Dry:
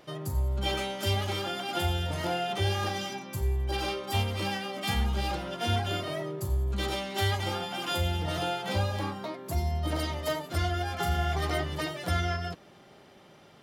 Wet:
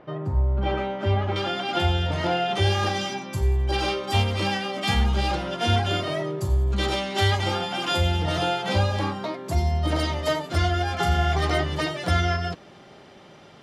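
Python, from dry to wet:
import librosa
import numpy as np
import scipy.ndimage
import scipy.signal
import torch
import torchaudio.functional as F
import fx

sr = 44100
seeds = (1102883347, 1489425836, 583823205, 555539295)

y = fx.lowpass(x, sr, hz=fx.steps((0.0, 1600.0), (1.36, 4600.0), (2.53, 7600.0)), slope=12)
y = y * 10.0 ** (6.5 / 20.0)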